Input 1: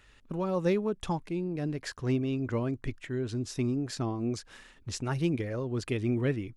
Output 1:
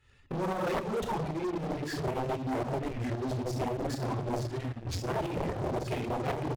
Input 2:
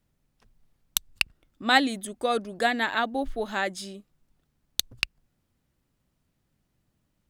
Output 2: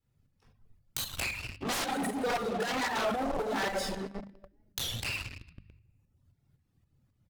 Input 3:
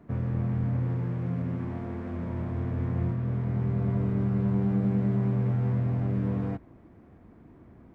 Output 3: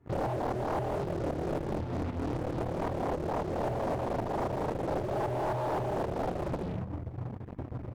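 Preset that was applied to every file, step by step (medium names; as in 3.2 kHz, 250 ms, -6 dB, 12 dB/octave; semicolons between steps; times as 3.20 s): simulated room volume 1200 m³, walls mixed, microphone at 4.1 m; reverb removal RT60 0.99 s; peaking EQ 100 Hz +12 dB 0.9 oct; on a send: delay 73 ms -20 dB; on the sum: Chebyshev shaper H 7 -11 dB, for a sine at -1 dBFS; in parallel at -6 dB: fuzz box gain 35 dB, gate -39 dBFS; on the sum: tremolo saw up 3.8 Hz, depth 55%; wavefolder -10.5 dBFS; compression 6:1, threshold -26 dBFS; dynamic bell 720 Hz, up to +6 dB, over -43 dBFS, Q 1; hum notches 50/100/150/200 Hz; warped record 33 1/3 rpm, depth 160 cents; trim -7 dB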